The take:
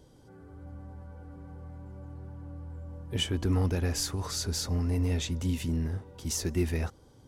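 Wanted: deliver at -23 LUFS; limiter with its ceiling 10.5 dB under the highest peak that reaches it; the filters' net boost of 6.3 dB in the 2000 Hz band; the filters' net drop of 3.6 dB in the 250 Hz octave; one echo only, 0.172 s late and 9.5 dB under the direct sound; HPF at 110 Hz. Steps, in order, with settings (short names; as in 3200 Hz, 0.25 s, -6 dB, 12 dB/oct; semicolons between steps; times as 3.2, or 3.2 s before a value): HPF 110 Hz; bell 250 Hz -4.5 dB; bell 2000 Hz +8 dB; limiter -25.5 dBFS; echo 0.172 s -9.5 dB; gain +12.5 dB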